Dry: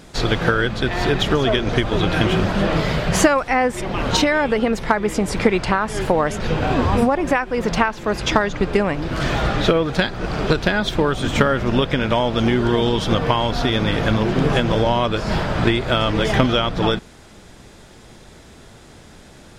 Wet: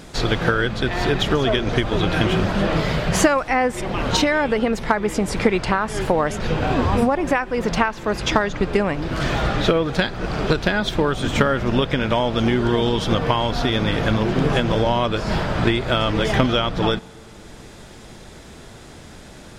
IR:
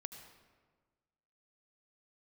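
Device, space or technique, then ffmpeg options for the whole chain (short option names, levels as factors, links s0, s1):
ducked reverb: -filter_complex "[0:a]asplit=3[s0][s1][s2];[1:a]atrim=start_sample=2205[s3];[s1][s3]afir=irnorm=-1:irlink=0[s4];[s2]apad=whole_len=863814[s5];[s4][s5]sidechaincompress=threshold=0.01:ratio=3:attack=16:release=390,volume=1.41[s6];[s0][s6]amix=inputs=2:normalize=0,volume=0.794"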